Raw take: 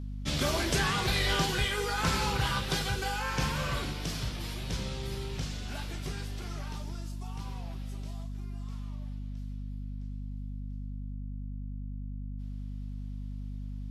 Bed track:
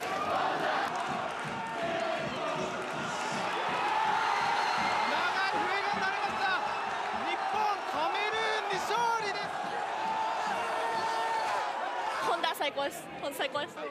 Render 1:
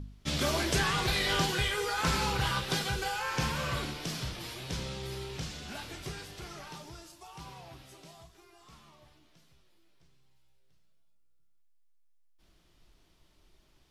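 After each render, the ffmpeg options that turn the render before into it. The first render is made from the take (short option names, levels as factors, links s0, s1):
-af "bandreject=f=50:t=h:w=4,bandreject=f=100:t=h:w=4,bandreject=f=150:t=h:w=4,bandreject=f=200:t=h:w=4,bandreject=f=250:t=h:w=4"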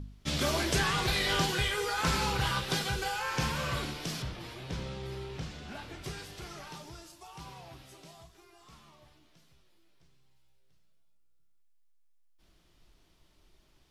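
-filter_complex "[0:a]asettb=1/sr,asplit=3[s0][s1][s2];[s0]atrim=end=4.224[s3];[s1]atrim=start=4.22:end=6.04,asetpts=PTS-STARTPTS,afade=t=in:d=0.004:c=qsin,afade=t=out:st=1.816:d=0.004:c=qsin,highshelf=f=3900:g=-11.5[s4];[s2]atrim=start=6.036[s5];[s3][s4]acrossfade=d=0.004:c1=hsin:c2=qsin[s6];[s6][s5]acrossfade=d=0.004:c1=qsin:c2=hsin"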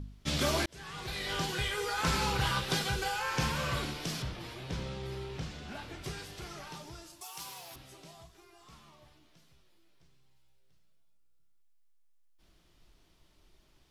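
-filter_complex "[0:a]asettb=1/sr,asplit=3[s0][s1][s2];[s0]atrim=end=7.214[s3];[s1]atrim=start=7.21:end=7.76,asetpts=PTS-STARTPTS,afade=t=in:d=0.004:c=qsin,afade=t=out:st=0.546:d=0.004:c=qsin,aemphasis=mode=production:type=riaa[s4];[s2]atrim=start=7.756[s5];[s3][s4]acrossfade=d=0.004:c1=hsin:c2=qsin[s6];[s6][s5]acrossfade=d=0.004:c1=qsin:c2=hsin,asplit=2[s7][s8];[s7]atrim=end=0.66,asetpts=PTS-STARTPTS,afade=t=out:st=0.656:d=0.004:c=hsin[s9];[s8]atrim=start=0.66,asetpts=PTS-STARTPTS,afade=t=in:d=2.03:c=qsin[s10];[s9][s10]concat=n=2:v=0:a=1"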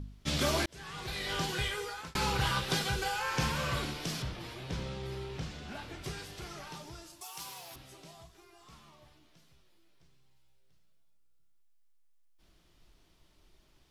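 -filter_complex "[0:a]asplit=2[s0][s1];[s0]atrim=end=2.15,asetpts=PTS-STARTPTS,afade=t=out:st=1.65:d=0.5[s2];[s1]atrim=start=2.15,asetpts=PTS-STARTPTS,afade=t=in:d=0.004:c=hsin[s3];[s2][s3]concat=n=2:v=0:a=1"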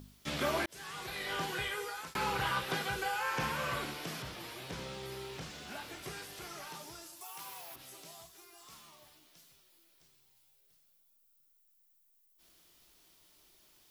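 -filter_complex "[0:a]aemphasis=mode=production:type=bsi,acrossover=split=2600[s0][s1];[s1]acompressor=threshold=0.00398:ratio=4:attack=1:release=60[s2];[s0][s2]amix=inputs=2:normalize=0"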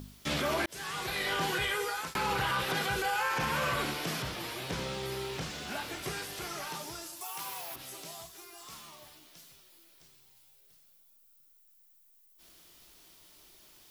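-af "acontrast=71,alimiter=limit=0.0794:level=0:latency=1:release=28"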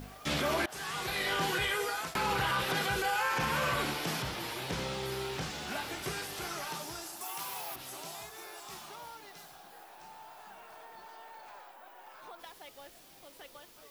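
-filter_complex "[1:a]volume=0.106[s0];[0:a][s0]amix=inputs=2:normalize=0"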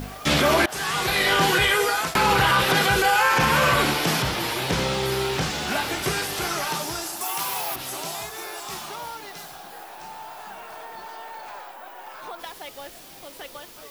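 -af "volume=3.98"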